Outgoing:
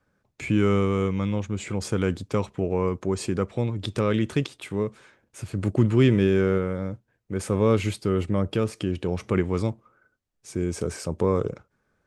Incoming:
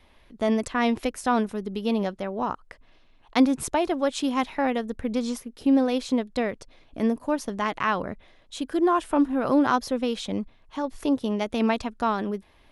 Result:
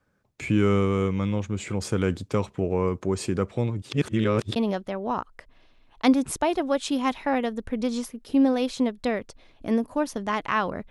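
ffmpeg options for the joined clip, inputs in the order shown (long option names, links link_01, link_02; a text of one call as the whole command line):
ffmpeg -i cue0.wav -i cue1.wav -filter_complex "[0:a]apad=whole_dur=10.9,atrim=end=10.9,asplit=2[link_01][link_02];[link_01]atrim=end=3.822[link_03];[link_02]atrim=start=3.818:end=4.562,asetpts=PTS-STARTPTS,areverse[link_04];[1:a]atrim=start=1.878:end=8.22[link_05];[link_03][link_04]acrossfade=duration=0.004:curve1=hsin:curve2=hsin[link_06];[link_06][link_05]acrossfade=duration=0.004:curve1=hsin:curve2=hsin" out.wav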